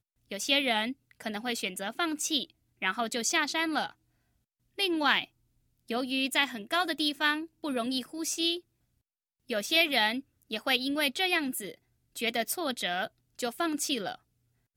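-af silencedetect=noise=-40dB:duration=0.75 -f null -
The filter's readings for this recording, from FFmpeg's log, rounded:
silence_start: 3.90
silence_end: 4.78 | silence_duration: 0.88
silence_start: 8.59
silence_end: 9.50 | silence_duration: 0.91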